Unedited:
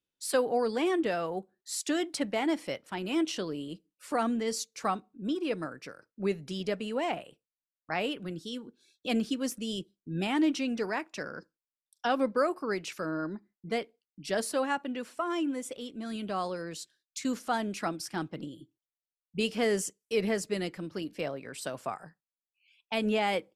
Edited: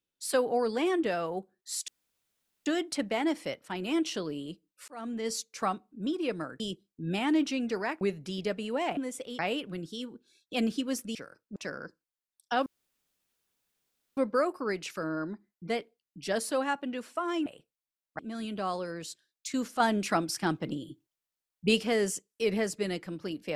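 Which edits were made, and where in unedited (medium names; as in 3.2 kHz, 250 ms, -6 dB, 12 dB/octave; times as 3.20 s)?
1.88 s: insert room tone 0.78 s
4.10–4.55 s: fade in
5.82–6.23 s: swap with 9.68–11.09 s
7.19–7.92 s: swap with 15.48–15.90 s
12.19 s: insert room tone 1.51 s
17.51–19.54 s: gain +5 dB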